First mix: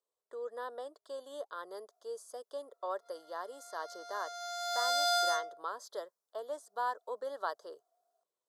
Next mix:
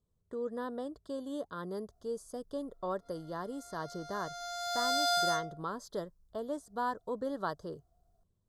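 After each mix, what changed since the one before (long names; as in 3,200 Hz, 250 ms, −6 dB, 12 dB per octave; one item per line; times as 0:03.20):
master: remove high-pass filter 490 Hz 24 dB per octave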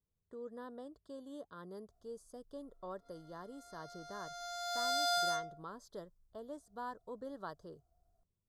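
speech −9.5 dB
background −3.5 dB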